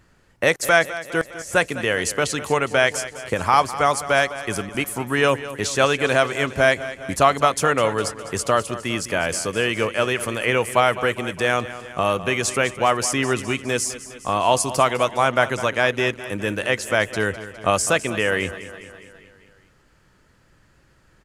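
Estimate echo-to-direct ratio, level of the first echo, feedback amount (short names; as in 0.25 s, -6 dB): -12.5 dB, -14.5 dB, 60%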